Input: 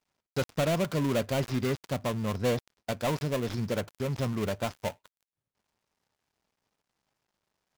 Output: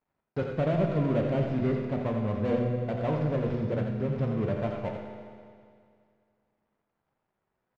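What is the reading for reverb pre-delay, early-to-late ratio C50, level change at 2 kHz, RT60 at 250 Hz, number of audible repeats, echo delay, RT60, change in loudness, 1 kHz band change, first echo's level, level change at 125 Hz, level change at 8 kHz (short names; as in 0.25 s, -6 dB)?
8 ms, 2.0 dB, -4.5 dB, 2.2 s, 1, 84 ms, 2.2 s, +2.0 dB, -1.0 dB, -7.5 dB, +3.5 dB, under -20 dB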